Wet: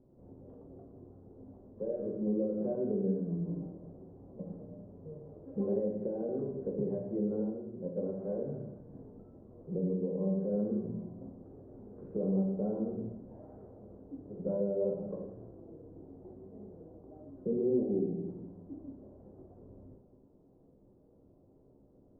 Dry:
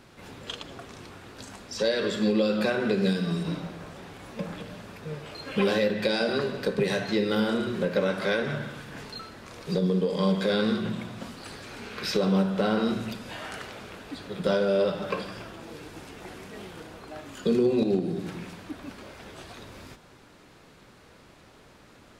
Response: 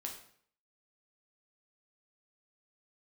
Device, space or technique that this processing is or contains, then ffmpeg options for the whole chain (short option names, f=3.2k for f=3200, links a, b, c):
next room: -filter_complex "[0:a]asettb=1/sr,asplit=3[a][b][c];[a]atrim=end=7.484[d];[b]atrim=start=7.48:end=8.12,asetpts=PTS-STARTPTS,afade=t=in:d=0.004:c=qsin,afade=t=out:st=0.636:d=0.004:c=qsin,agate=range=-7dB:threshold=-24dB:ratio=16:detection=peak[e];[c]atrim=start=8.116[f];[d][e]acrossfade=d=0.004:c1=hsin:c2=qsin[g];[g][f]acrossfade=d=0.004:c1=qsin:c2=hsin,lowpass=f=570:w=0.5412,lowpass=f=570:w=1.3066[h];[1:a]atrim=start_sample=2205[i];[h][i]afir=irnorm=-1:irlink=0,volume=-4.5dB"